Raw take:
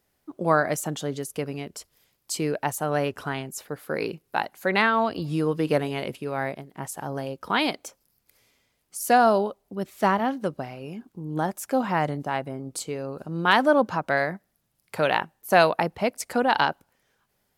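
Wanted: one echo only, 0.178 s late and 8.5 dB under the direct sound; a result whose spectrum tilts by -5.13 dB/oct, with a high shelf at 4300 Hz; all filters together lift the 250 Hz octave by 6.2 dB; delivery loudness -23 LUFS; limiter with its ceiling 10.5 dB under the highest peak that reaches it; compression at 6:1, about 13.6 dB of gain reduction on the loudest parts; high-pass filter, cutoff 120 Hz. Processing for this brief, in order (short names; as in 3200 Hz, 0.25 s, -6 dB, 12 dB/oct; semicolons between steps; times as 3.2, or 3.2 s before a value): HPF 120 Hz; bell 250 Hz +8 dB; high shelf 4300 Hz -4 dB; compressor 6:1, threshold -27 dBFS; limiter -25 dBFS; echo 0.178 s -8.5 dB; gain +12.5 dB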